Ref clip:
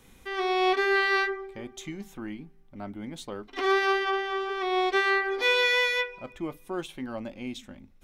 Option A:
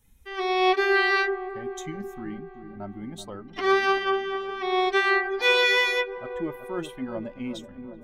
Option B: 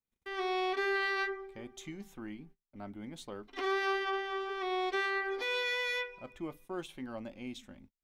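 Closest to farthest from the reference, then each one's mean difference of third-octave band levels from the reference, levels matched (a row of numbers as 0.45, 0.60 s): B, A; 1.5, 5.0 dB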